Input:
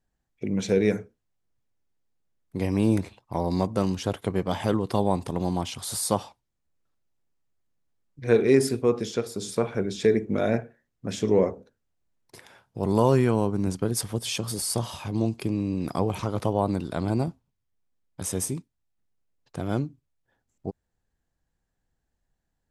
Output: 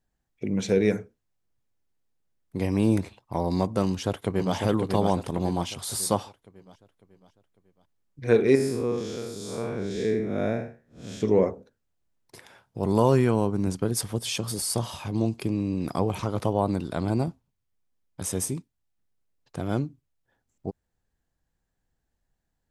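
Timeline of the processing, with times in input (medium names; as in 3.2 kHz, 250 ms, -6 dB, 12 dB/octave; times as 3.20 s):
3.84–4.55 s: echo throw 550 ms, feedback 45%, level -4 dB
8.55–11.21 s: spectral blur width 179 ms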